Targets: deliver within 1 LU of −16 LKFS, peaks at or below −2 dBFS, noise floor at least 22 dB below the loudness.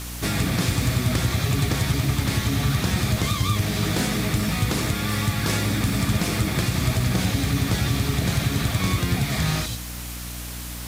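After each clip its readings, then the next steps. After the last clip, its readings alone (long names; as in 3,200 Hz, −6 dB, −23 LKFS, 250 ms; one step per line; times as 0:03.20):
mains hum 60 Hz; hum harmonics up to 300 Hz; level of the hum −32 dBFS; background noise floor −33 dBFS; target noise floor −46 dBFS; integrated loudness −23.5 LKFS; sample peak −9.5 dBFS; target loudness −16.0 LKFS
→ mains-hum notches 60/120/180/240/300 Hz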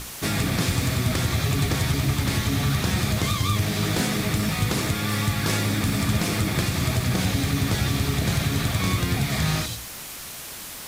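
mains hum none found; background noise floor −37 dBFS; target noise floor −46 dBFS
→ broadband denoise 9 dB, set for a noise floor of −37 dBFS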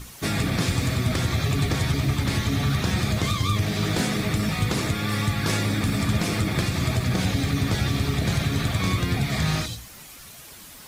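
background noise floor −44 dBFS; target noise floor −46 dBFS
→ broadband denoise 6 dB, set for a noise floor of −44 dBFS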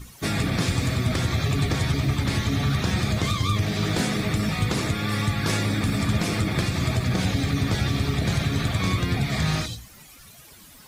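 background noise floor −48 dBFS; integrated loudness −24.5 LKFS; sample peak −11.5 dBFS; target loudness −16.0 LKFS
→ level +8.5 dB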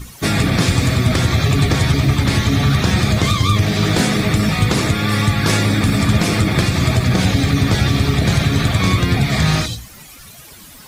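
integrated loudness −16.0 LKFS; sample peak −3.0 dBFS; background noise floor −40 dBFS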